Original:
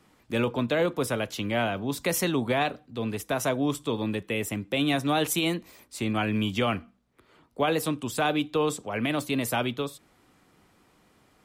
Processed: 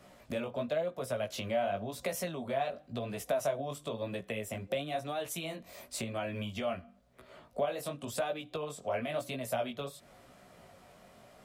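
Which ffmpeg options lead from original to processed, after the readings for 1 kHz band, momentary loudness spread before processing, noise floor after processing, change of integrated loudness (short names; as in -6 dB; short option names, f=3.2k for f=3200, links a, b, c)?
-7.5 dB, 7 LU, -60 dBFS, -8.5 dB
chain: -af "flanger=delay=15.5:depth=6.7:speed=0.96,acompressor=threshold=-41dB:ratio=12,superequalizer=6b=0.501:8b=3.16,volume=6dB"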